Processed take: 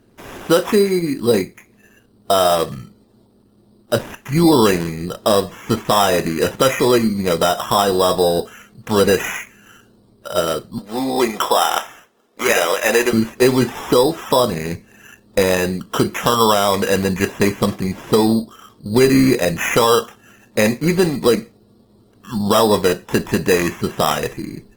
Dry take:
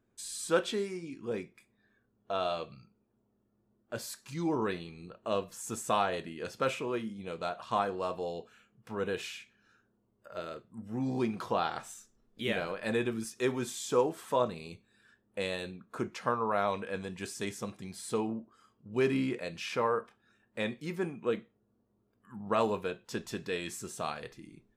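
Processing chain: 10.78–13.13 HPF 500 Hz 12 dB/oct; compressor 3:1, threshold -32 dBFS, peak gain reduction 8.5 dB; LPF 2600 Hz 12 dB/oct; notch 1500 Hz, Q 23; sample-and-hold 10×; maximiser +25.5 dB; gain -3 dB; Opus 20 kbps 48000 Hz

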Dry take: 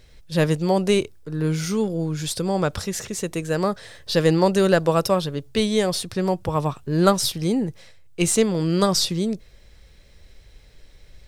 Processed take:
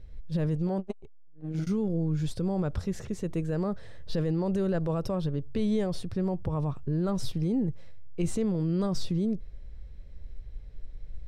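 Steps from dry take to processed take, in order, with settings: tilt -3.5 dB/oct; limiter -11.5 dBFS, peak gain reduction 11.5 dB; 0.67–1.67 core saturation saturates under 190 Hz; gain -9 dB

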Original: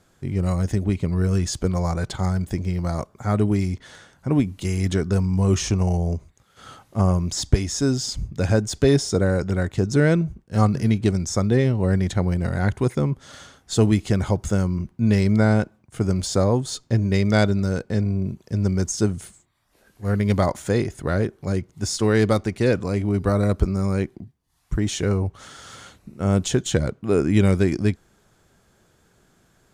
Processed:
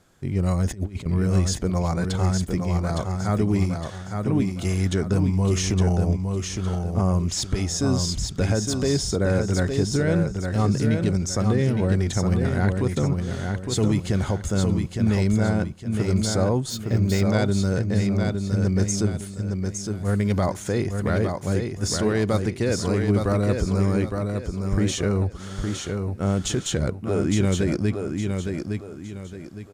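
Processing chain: 0.66–1.06 negative-ratio compressor -28 dBFS, ratio -0.5; limiter -14 dBFS, peak gain reduction 10 dB; on a send: feedback echo 0.862 s, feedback 34%, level -5 dB; 16.7–17.23 on the sum: decimation joined by straight lines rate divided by 2×

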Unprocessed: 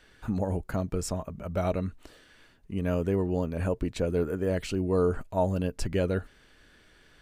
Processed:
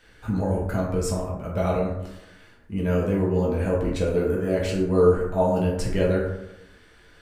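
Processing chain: plate-style reverb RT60 0.91 s, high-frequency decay 0.45×, DRR -4 dB

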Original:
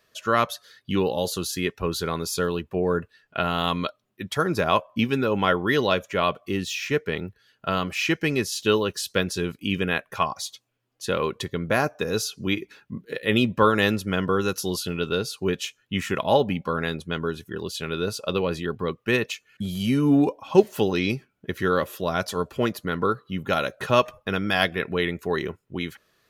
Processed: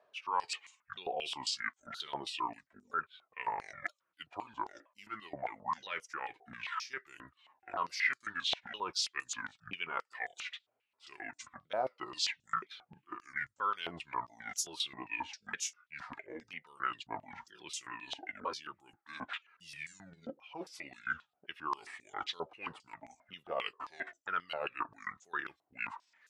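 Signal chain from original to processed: repeated pitch sweeps -11.5 st, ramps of 0.971 s; reverse; compressor 16:1, threshold -31 dBFS, peak gain reduction 21 dB; reverse; stepped band-pass 7.5 Hz 720–6900 Hz; gain +9 dB

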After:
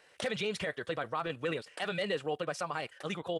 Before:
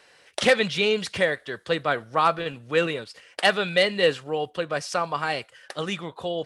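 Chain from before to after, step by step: tempo 1.9×; limiter -18.5 dBFS, peak gain reduction 11.5 dB; bell 4700 Hz -4 dB 0.74 oct; gain -5 dB

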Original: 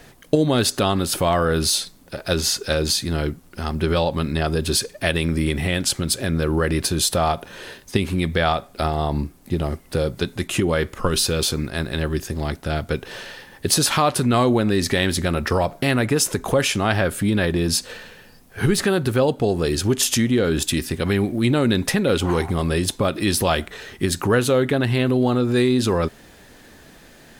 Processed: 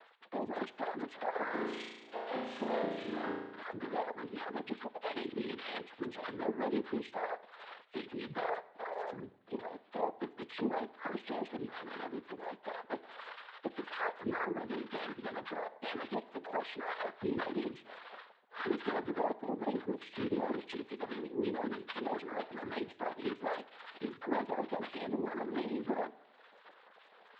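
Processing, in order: sine-wave speech; HPF 330 Hz 12 dB/oct; compressor 2:1, threshold -40 dBFS, peak gain reduction 16 dB; chorus voices 4, 0.6 Hz, delay 11 ms, depth 1.6 ms; noise vocoder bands 6; air absorption 130 m; 1.44–3.63 flutter echo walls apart 6.1 m, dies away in 0.9 s; reverb RT60 0.80 s, pre-delay 6 ms, DRR 16.5 dB; gain -2 dB

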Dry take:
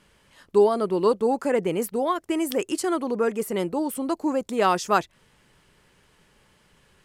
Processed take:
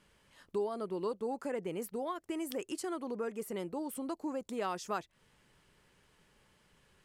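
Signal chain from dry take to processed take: compressor 2:1, threshold -31 dBFS, peak gain reduction 10 dB; gain -7.5 dB

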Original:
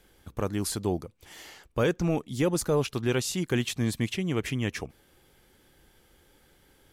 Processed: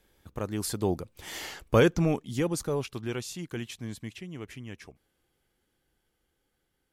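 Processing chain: Doppler pass-by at 1.47, 11 m/s, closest 3 m; gain +8.5 dB

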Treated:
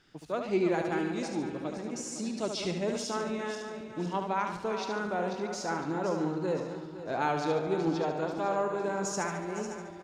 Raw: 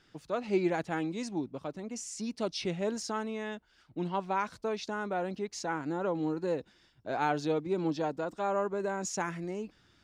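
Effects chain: regenerating reverse delay 0.254 s, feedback 63%, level -9 dB; feedback echo 72 ms, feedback 47%, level -6.5 dB

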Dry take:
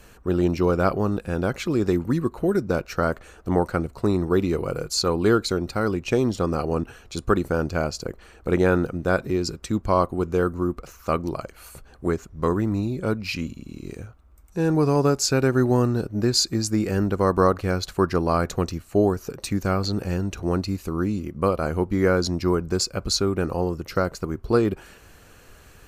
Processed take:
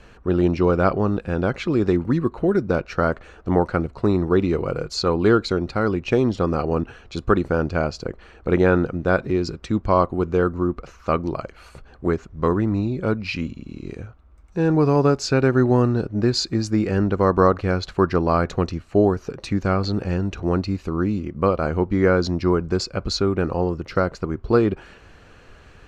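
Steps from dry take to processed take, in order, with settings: LPF 4000 Hz 12 dB/oct; gain +2.5 dB

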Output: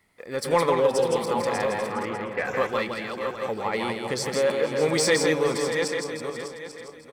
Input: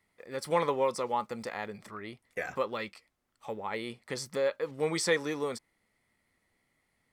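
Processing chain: regenerating reverse delay 0.42 s, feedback 44%, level -6.5 dB; 0.79–1.21 spectral repair 560–2500 Hz before; 1.87–2.47 steep low-pass 3200 Hz 72 dB/oct; in parallel at -4 dB: soft clip -32 dBFS, distortion -7 dB; on the sum: tapped delay 0.164/0.468/0.601 s -4.5/-18.5/-11 dB; gain +4 dB

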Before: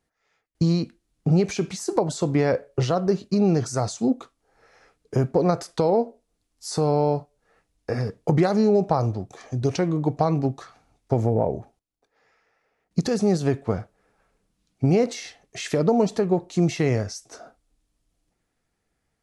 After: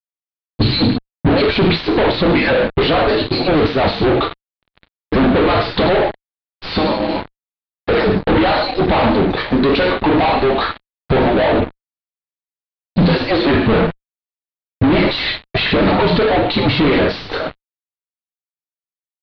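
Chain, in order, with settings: median-filter separation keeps percussive; non-linear reverb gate 0.17 s falling, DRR 3 dB; in parallel at -2.5 dB: negative-ratio compressor -29 dBFS, ratio -1; on the sum: high shelf 2900 Hz +7 dB; fuzz box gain 37 dB, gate -42 dBFS; steep low-pass 4200 Hz 72 dB/oct; low shelf 200 Hz +8.5 dB

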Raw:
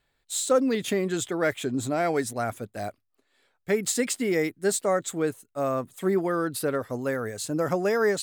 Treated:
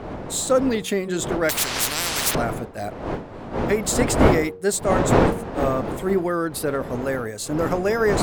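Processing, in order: wind noise 560 Hz -28 dBFS; de-hum 93.01 Hz, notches 6; 1.49–2.35 spectral compressor 10:1; gain +3 dB

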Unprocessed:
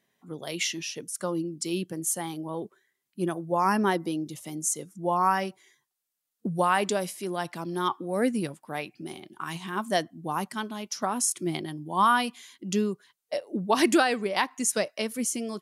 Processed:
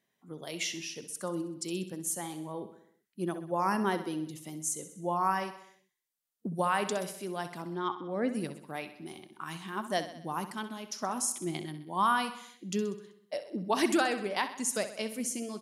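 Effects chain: 7.62–8.29 air absorption 160 m; feedback echo 64 ms, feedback 56%, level -12 dB; gain -5.5 dB

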